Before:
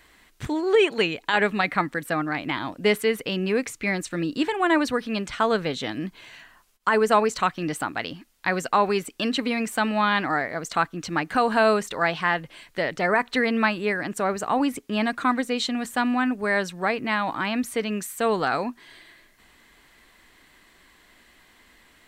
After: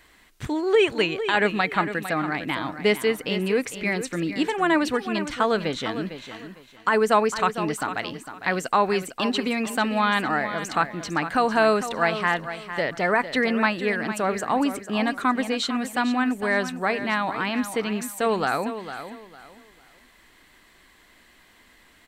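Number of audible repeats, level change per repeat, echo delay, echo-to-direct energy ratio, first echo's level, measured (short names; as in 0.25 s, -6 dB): 3, -11.5 dB, 0.454 s, -10.5 dB, -11.0 dB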